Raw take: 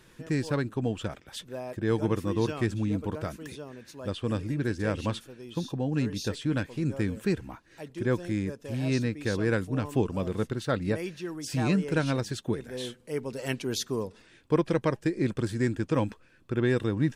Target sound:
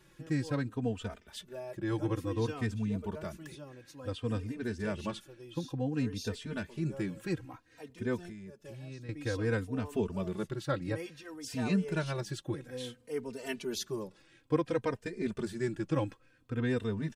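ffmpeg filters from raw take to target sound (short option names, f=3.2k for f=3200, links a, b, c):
-filter_complex "[0:a]asettb=1/sr,asplit=3[a][b][c];[a]atrim=end=8.254[d];[b]atrim=start=8.25:end=9.09,asetpts=PTS-STARTPTS,afade=t=in:d=0.004:c=qsin,afade=t=out:st=0.836:d=0.004:c=qsin,acompressor=threshold=-37dB:ratio=8[e];[c]atrim=start=9.086[f];[d][e]acrossfade=d=0.004:c1=hsin:c2=qsin[g];[g][f]acrossfade=d=0.004:c1=qsin:c2=hsin,asplit=2[h][i];[i]adelay=3.1,afreqshift=-0.57[j];[h][j]amix=inputs=2:normalize=1,volume=-2.5dB"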